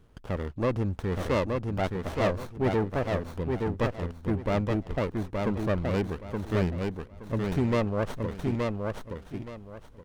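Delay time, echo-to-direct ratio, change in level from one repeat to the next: 872 ms, -3.0 dB, -12.5 dB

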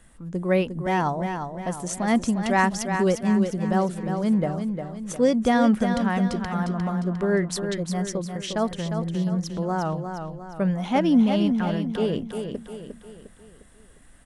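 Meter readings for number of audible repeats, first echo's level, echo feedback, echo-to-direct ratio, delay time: 5, -7.0 dB, 46%, -6.0 dB, 354 ms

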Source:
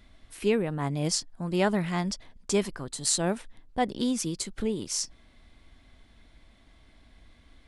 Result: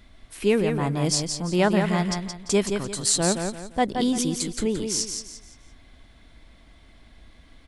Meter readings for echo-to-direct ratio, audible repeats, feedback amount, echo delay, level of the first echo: -5.5 dB, 3, 32%, 172 ms, -6.0 dB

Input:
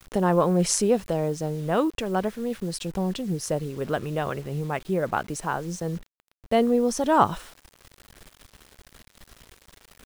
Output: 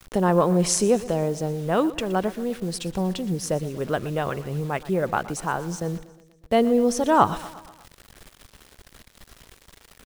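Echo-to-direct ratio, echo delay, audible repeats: -16.0 dB, 120 ms, 4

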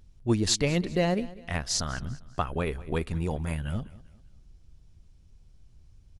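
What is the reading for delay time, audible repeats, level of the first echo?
198 ms, 2, -19.5 dB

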